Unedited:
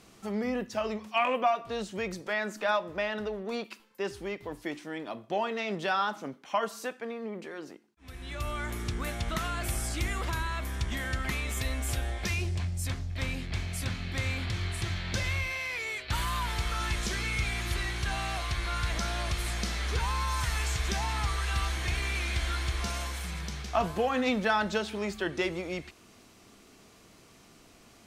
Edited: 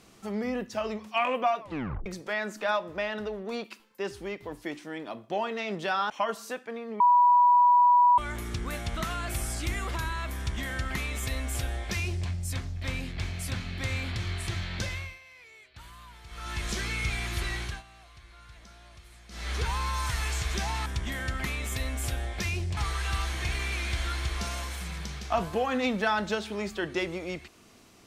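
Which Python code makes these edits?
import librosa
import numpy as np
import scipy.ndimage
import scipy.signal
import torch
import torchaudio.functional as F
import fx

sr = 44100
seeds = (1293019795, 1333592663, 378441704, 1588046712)

y = fx.edit(x, sr, fx.tape_stop(start_s=1.6, length_s=0.46),
    fx.cut(start_s=6.1, length_s=0.34),
    fx.bleep(start_s=7.34, length_s=1.18, hz=976.0, db=-16.0),
    fx.duplicate(start_s=10.71, length_s=1.91, to_s=21.2),
    fx.fade_down_up(start_s=15.09, length_s=1.96, db=-17.5, fade_s=0.44),
    fx.fade_down_up(start_s=17.95, length_s=1.9, db=-20.0, fade_s=0.22), tone=tone)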